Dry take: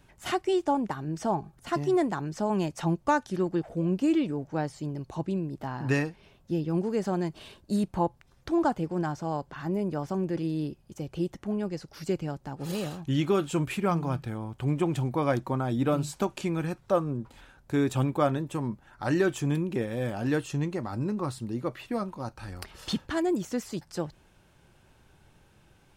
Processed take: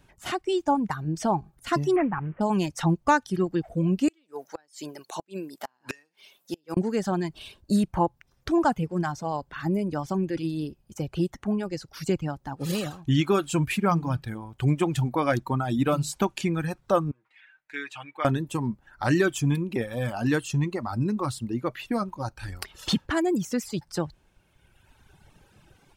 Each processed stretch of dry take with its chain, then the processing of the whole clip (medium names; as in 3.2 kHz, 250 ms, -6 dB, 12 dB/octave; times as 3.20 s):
1.96–2.41 s: CVSD coder 16 kbps + low-pass 2.3 kHz 24 dB/octave
4.08–6.77 s: high-pass 250 Hz + tilt EQ +3 dB/octave + inverted gate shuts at -25 dBFS, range -27 dB
17.11–18.25 s: band-pass filter 2.1 kHz, Q 2.6 + comb 6.5 ms, depth 72%
whole clip: reverb removal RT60 1.8 s; dynamic bell 490 Hz, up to -5 dB, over -37 dBFS, Q 0.9; level rider gain up to 6.5 dB